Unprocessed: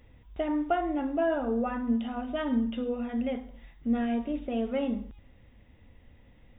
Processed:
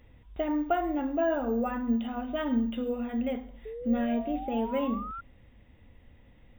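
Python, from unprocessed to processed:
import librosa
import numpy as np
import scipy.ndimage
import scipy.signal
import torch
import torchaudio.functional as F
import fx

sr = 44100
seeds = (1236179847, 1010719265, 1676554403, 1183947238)

y = np.repeat(scipy.signal.resample_poly(x, 1, 2), 2)[:len(x)]
y = fx.spec_paint(y, sr, seeds[0], shape='rise', start_s=3.65, length_s=1.56, low_hz=430.0, high_hz=1400.0, level_db=-39.0)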